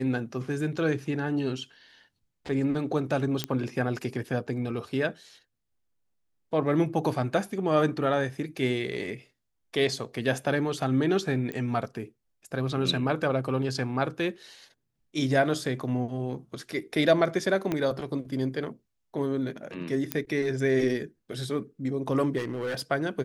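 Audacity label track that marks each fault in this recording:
3.440000	3.440000	pop -11 dBFS
11.520000	11.520000	pop -21 dBFS
17.720000	17.720000	pop -15 dBFS
20.120000	20.120000	pop -10 dBFS
22.370000	22.810000	clipped -27 dBFS

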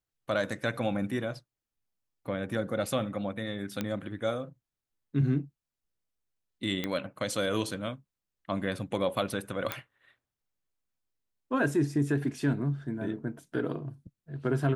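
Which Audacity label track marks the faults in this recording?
3.810000	3.810000	pop -17 dBFS
6.840000	6.840000	pop -17 dBFS
9.720000	9.720000	pop -14 dBFS

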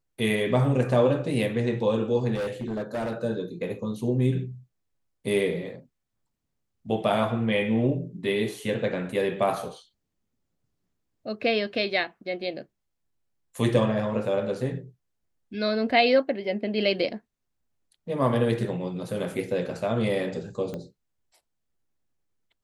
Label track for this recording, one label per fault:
2.340000	3.130000	clipped -26 dBFS
20.740000	20.740000	pop -22 dBFS

